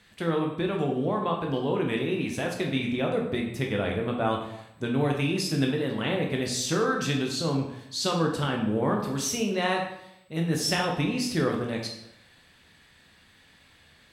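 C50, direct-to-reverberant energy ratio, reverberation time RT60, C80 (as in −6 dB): 5.0 dB, 0.5 dB, 0.80 s, 8.0 dB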